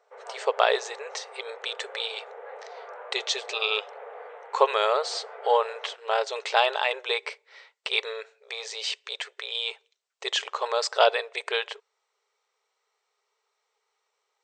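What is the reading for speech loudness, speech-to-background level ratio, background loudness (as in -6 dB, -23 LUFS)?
-27.5 LUFS, 15.5 dB, -43.0 LUFS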